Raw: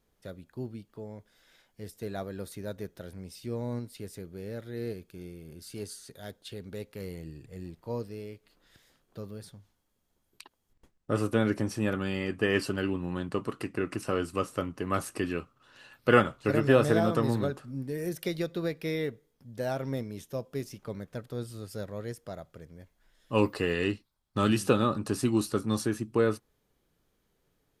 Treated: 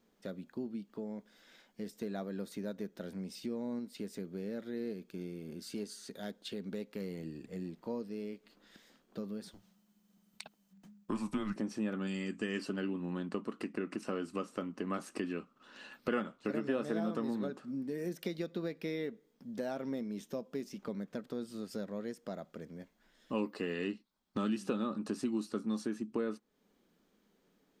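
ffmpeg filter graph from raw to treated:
-filter_complex "[0:a]asettb=1/sr,asplit=3[a][b][c];[a]atrim=end=9.514[d];[b]atrim=start=9.51:end=11.56,asetpts=PTS-STARTPTS,afade=t=in:d=0.004:c=qsin,afade=t=out:st=2.046:d=0.004:c=qsin,highshelf=f=7.1k:g=7,afreqshift=-210[e];[c]atrim=start=11.556[f];[d][e]acrossfade=d=0.004:c1=hsin:c2=qsin[g];[g][f]acrossfade=d=0.004:c1=qsin:c2=hsin,asettb=1/sr,asplit=3[h][i][j];[h]atrim=end=12.074[k];[i]atrim=start=12.07:end=12.59,asetpts=PTS-STARTPTS,afade=t=in:d=0.004:c=qsin,afade=t=out:st=0.516:d=0.004:c=qsin,lowpass=f=7.6k:t=q:w=6,equalizer=f=670:t=o:w=1.9:g=-6.5[l];[j]atrim=start=12.586[m];[k][l]acrossfade=d=0.004:c1=hsin:c2=qsin[n];[n][m]acrossfade=d=0.004:c1=qsin:c2=hsin,lowshelf=f=150:t=q:w=3:g=-10.5,acompressor=threshold=-40dB:ratio=2.5,equalizer=f=11k:t=o:w=0.46:g=-12,volume=1.5dB"

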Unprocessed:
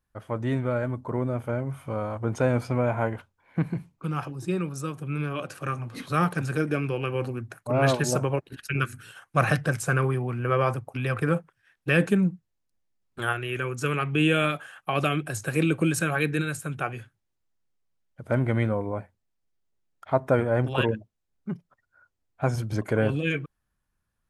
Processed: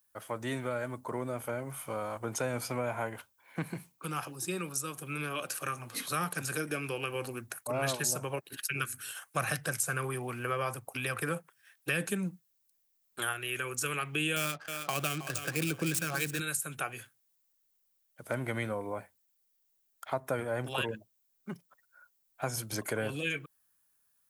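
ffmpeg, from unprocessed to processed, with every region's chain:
-filter_complex "[0:a]asettb=1/sr,asplit=3[a][b][c];[a]atrim=end=14.364[d];[b]atrim=start=14.36:end=16.4,asetpts=PTS-STARTPTS,afade=t=in:d=0.004:c=qsin,afade=t=out:st=2.036:d=0.004:c=qsin,bass=f=250:g=4,treble=f=4k:g=1,adynamicsmooth=sensitivity=8:basefreq=750,aecho=1:1:317|634|951:0.224|0.0627|0.0176,atrim=end_sample=89964[e];[c]atrim=start=16.396[f];[d][e]acrossfade=d=0.004:c1=hsin:c2=qsin[g];[g][f]acrossfade=d=0.004:c1=qsin:c2=hsin,aemphasis=mode=production:type=riaa,acrossover=split=170[h][i];[i]acompressor=threshold=-32dB:ratio=2.5[j];[h][j]amix=inputs=2:normalize=0,volume=-1dB"

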